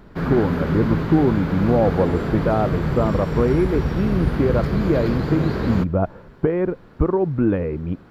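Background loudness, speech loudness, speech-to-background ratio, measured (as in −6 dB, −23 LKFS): −24.0 LKFS, −21.5 LKFS, 2.5 dB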